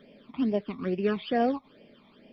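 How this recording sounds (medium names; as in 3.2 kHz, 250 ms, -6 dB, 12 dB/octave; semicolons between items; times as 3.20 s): phasing stages 12, 2.3 Hz, lowest notch 490–1300 Hz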